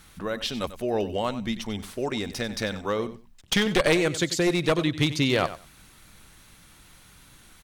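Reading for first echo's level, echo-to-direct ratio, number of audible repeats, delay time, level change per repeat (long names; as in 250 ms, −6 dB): −14.0 dB, −14.0 dB, 2, 94 ms, −16.0 dB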